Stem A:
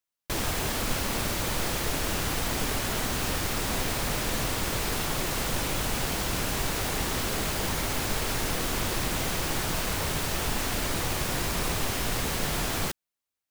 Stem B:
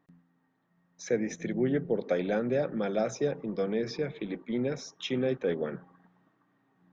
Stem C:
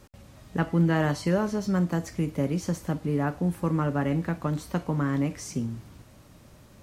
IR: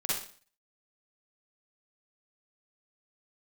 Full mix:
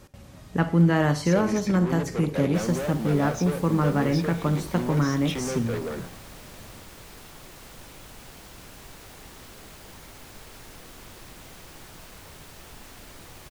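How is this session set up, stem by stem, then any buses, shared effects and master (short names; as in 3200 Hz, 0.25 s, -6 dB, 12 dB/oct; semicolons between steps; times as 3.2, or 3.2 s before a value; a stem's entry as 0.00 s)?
-16.5 dB, 2.25 s, no send, dry
+2.0 dB, 0.25 s, no send, sample leveller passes 1; soft clip -30 dBFS, distortion -8 dB; sustainer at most 130 dB/s
+2.0 dB, 0.00 s, send -18.5 dB, dry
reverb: on, RT60 0.45 s, pre-delay 41 ms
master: dry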